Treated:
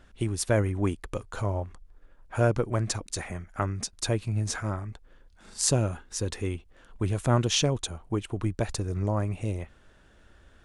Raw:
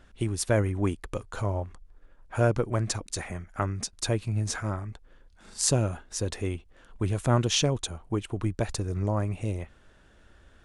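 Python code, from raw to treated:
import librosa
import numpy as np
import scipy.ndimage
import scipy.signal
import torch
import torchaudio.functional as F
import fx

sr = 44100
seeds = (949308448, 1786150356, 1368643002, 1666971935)

y = fx.peak_eq(x, sr, hz=650.0, db=-10.5, octaves=0.25, at=(5.93, 6.56))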